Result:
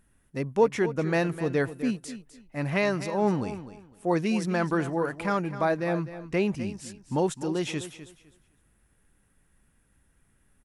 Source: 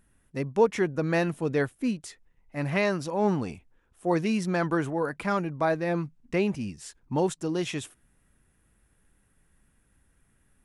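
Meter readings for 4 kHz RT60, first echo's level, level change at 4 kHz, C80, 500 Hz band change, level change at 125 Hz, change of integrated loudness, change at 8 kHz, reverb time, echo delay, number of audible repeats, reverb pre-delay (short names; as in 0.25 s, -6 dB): none, -13.0 dB, 0.0 dB, none, 0.0 dB, 0.0 dB, +0.5 dB, 0.0 dB, none, 0.254 s, 2, none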